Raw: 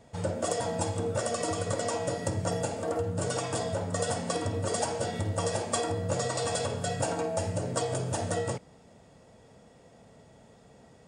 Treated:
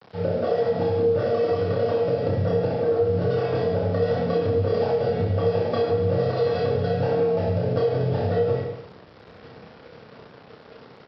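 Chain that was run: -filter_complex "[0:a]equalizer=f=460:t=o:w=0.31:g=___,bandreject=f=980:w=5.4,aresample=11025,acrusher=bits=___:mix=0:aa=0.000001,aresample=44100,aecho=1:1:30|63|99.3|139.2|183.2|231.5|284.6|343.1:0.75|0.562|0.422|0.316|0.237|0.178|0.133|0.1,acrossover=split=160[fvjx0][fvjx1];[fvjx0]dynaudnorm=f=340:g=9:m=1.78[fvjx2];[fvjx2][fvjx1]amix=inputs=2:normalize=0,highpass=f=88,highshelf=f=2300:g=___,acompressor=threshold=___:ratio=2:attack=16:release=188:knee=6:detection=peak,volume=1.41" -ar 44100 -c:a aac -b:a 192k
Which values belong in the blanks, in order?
10.5, 7, -8, 0.0631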